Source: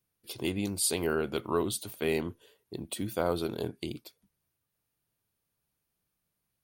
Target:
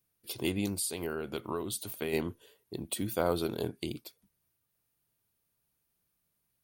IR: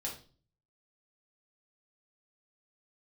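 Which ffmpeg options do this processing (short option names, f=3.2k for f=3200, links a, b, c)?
-filter_complex "[0:a]highshelf=f=10k:g=6,asplit=3[a][b][c];[a]afade=t=out:st=0.74:d=0.02[d];[b]acompressor=threshold=-32dB:ratio=5,afade=t=in:st=0.74:d=0.02,afade=t=out:st=2.12:d=0.02[e];[c]afade=t=in:st=2.12:d=0.02[f];[d][e][f]amix=inputs=3:normalize=0"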